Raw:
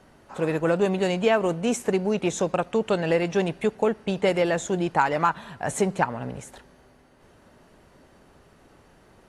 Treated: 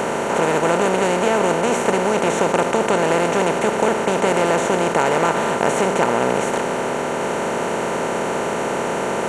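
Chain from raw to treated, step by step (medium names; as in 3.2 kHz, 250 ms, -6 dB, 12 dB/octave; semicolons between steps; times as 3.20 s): spectral levelling over time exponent 0.2; trim -3.5 dB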